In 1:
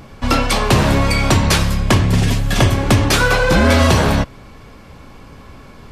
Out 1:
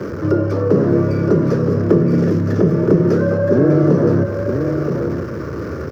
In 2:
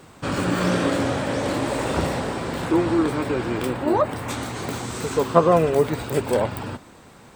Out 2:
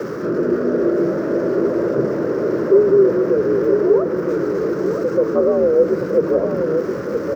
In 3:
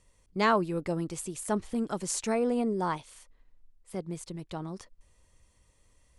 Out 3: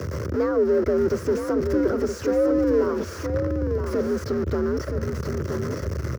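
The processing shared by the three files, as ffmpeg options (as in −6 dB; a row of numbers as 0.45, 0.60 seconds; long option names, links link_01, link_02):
-filter_complex "[0:a]aeval=exprs='val(0)+0.5*0.133*sgn(val(0))':channel_layout=same,firequalizer=gain_entry='entry(190,0);entry(310,10);entry(470,7);entry(680,-11);entry(1300,4);entry(2300,-13);entry(3500,-20);entry(5300,-8);entry(8500,-30);entry(12000,-22)':delay=0.05:min_phase=1,acrossover=split=720[link_01][link_02];[link_02]acompressor=threshold=-31dB:ratio=6[link_03];[link_01][link_03]amix=inputs=2:normalize=0,highshelf=frequency=6300:gain=5,asplit=2[link_04][link_05];[link_05]aecho=0:1:970:0.473[link_06];[link_04][link_06]amix=inputs=2:normalize=0,afreqshift=66,volume=-4.5dB"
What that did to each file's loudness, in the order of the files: −1.5, +5.5, +7.5 LU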